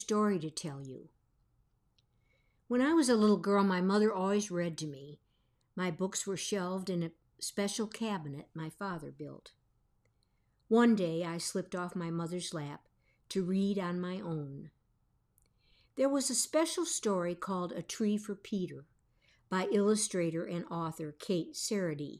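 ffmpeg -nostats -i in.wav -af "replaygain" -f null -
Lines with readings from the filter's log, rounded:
track_gain = +13.2 dB
track_peak = 0.124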